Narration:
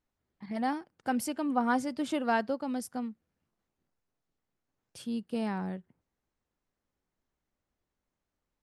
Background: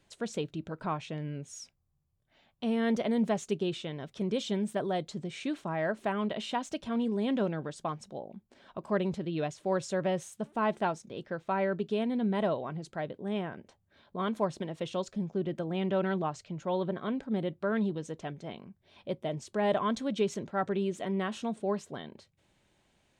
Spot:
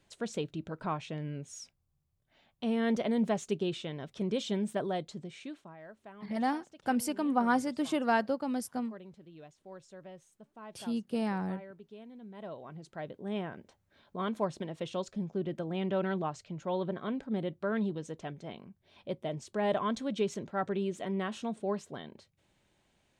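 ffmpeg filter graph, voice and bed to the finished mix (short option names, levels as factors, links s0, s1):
-filter_complex "[0:a]adelay=5800,volume=1.06[s0];[1:a]volume=6.31,afade=t=out:st=4.79:d=0.98:silence=0.125893,afade=t=in:st=12.33:d=1.05:silence=0.141254[s1];[s0][s1]amix=inputs=2:normalize=0"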